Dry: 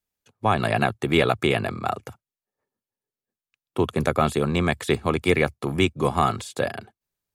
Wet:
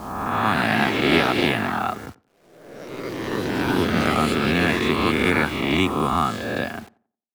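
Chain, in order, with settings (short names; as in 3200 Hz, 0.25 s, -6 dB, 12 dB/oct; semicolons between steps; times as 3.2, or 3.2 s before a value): spectral swells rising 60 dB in 1.53 s; low-pass opened by the level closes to 680 Hz, open at -13 dBFS; graphic EQ 125/250/500/8000 Hz -6/+7/-10/-4 dB; in parallel at +1.5 dB: compressor, threshold -31 dBFS, peak gain reduction 17 dB; on the sum: bit-crush 7-bit; on a send: tape echo 91 ms, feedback 33%, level -20 dB, low-pass 1400 Hz; on the sum: echoes that change speed 0.187 s, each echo +3 st, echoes 3, each echo -6 dB; gain -3 dB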